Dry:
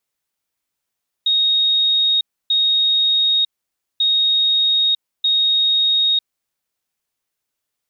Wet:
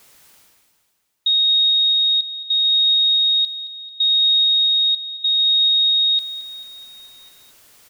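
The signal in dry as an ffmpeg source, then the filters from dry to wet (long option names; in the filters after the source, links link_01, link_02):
-f lavfi -i "aevalsrc='0.224*sin(2*PI*3740*t)*clip(min(mod(mod(t,2.74),1.24),0.95-mod(mod(t,2.74),1.24))/0.005,0,1)*lt(mod(t,2.74),2.48)':duration=5.48:sample_rate=44100"
-af "areverse,acompressor=mode=upward:threshold=-27dB:ratio=2.5,areverse,aecho=1:1:220|440|660|880|1100|1320:0.224|0.13|0.0753|0.0437|0.0253|0.0147"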